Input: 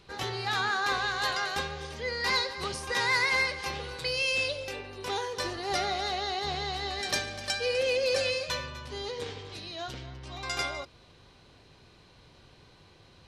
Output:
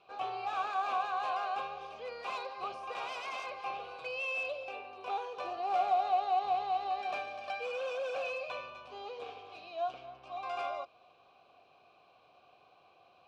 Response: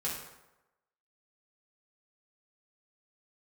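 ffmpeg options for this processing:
-filter_complex "[0:a]acrossover=split=3500[a][b];[b]acompressor=threshold=-44dB:ratio=4:attack=1:release=60[c];[a][c]amix=inputs=2:normalize=0,aeval=exprs='0.0473*(abs(mod(val(0)/0.0473+3,4)-2)-1)':c=same,asplit=3[d][e][f];[d]bandpass=f=730:t=q:w=8,volume=0dB[g];[e]bandpass=f=1.09k:t=q:w=8,volume=-6dB[h];[f]bandpass=f=2.44k:t=q:w=8,volume=-9dB[i];[g][h][i]amix=inputs=3:normalize=0,volume=7.5dB"

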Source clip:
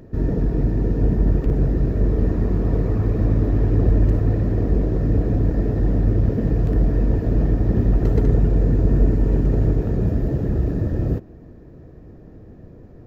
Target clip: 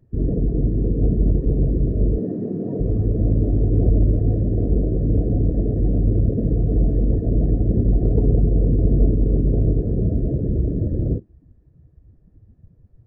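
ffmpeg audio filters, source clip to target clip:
-filter_complex "[0:a]asettb=1/sr,asplit=3[a][b][c];[a]atrim=end=2.184[d];[b]atrim=start=2.18:end=2.8,asetpts=PTS-STARTPTS,afade=t=in:d=0.004:c=qsin,afade=t=out:st=0.616:d=0.004:c=qsin,highpass=f=150:w=0.5412,highpass=f=150:w=1.3066[e];[c]atrim=start=2.796[f];[d][e]acrossfade=d=0.004:c1=hsin:c2=qsin[g];[g][f]acrossfade=d=0.004:c1=qsin:c2=hsin,afftdn=nr=22:nf=-27"

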